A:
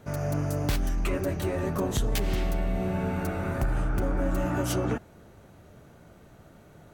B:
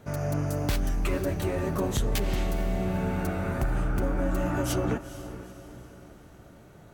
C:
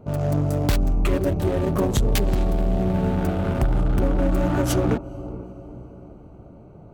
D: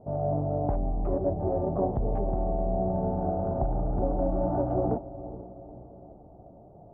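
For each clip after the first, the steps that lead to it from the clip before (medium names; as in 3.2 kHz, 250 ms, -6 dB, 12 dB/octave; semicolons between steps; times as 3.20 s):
echo that smears into a reverb 454 ms, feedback 46%, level -13.5 dB
local Wiener filter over 25 samples; trim +7 dB
four-pole ladder low-pass 810 Hz, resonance 65%; trim +2.5 dB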